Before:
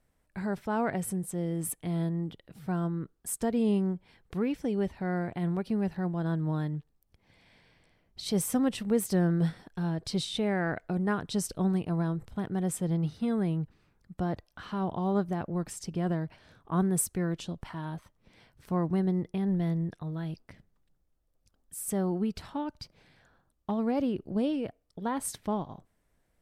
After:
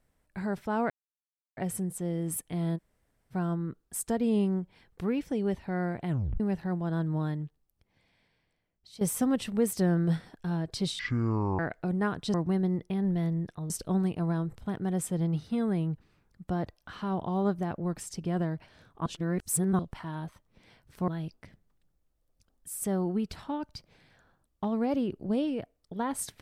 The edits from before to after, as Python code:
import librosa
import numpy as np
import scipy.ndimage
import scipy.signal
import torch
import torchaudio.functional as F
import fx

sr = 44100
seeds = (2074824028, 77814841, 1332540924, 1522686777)

y = fx.edit(x, sr, fx.insert_silence(at_s=0.9, length_s=0.67),
    fx.room_tone_fill(start_s=2.1, length_s=0.55, crossfade_s=0.04),
    fx.tape_stop(start_s=5.42, length_s=0.31),
    fx.fade_out_to(start_s=6.59, length_s=1.75, curve='qua', floor_db=-14.5),
    fx.speed_span(start_s=10.32, length_s=0.33, speed=0.55),
    fx.reverse_span(start_s=16.76, length_s=0.73),
    fx.move(start_s=18.78, length_s=1.36, to_s=11.4), tone=tone)